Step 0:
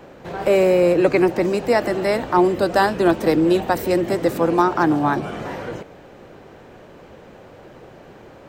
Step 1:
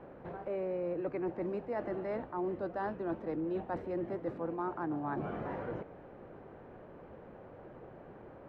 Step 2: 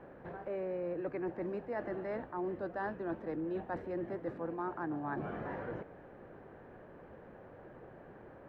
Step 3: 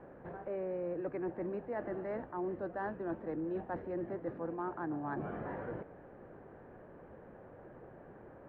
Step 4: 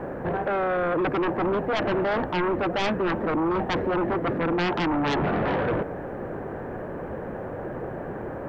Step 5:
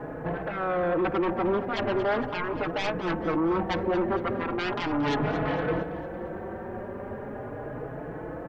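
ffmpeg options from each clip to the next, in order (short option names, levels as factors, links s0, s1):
-af "lowpass=1500,areverse,acompressor=threshold=0.0501:ratio=6,areverse,volume=0.398"
-af "equalizer=f=1700:t=o:w=0.3:g=6.5,volume=0.794"
-af "adynamicsmooth=sensitivity=0.5:basefreq=2800"
-af "aeval=exprs='0.0473*sin(PI/2*3.55*val(0)/0.0473)':c=same,volume=1.88"
-filter_complex "[0:a]aecho=1:1:228|456|684|912|1140:0.211|0.0993|0.0467|0.0219|0.0103,asplit=2[s0][s1];[s1]adelay=4.3,afreqshift=0.38[s2];[s0][s2]amix=inputs=2:normalize=1"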